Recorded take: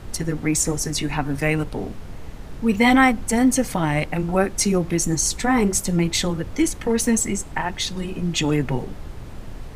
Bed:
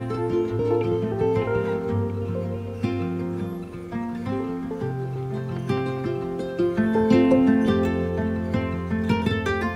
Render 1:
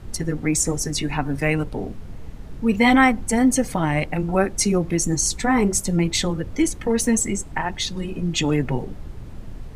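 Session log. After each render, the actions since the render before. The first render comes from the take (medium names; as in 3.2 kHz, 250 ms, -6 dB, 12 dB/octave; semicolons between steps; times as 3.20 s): noise reduction 6 dB, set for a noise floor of -36 dBFS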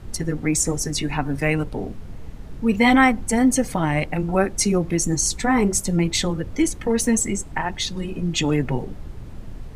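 no audible change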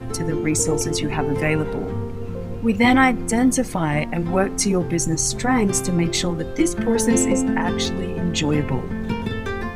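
add bed -3 dB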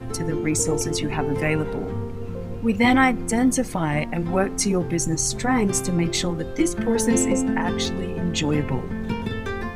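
trim -2 dB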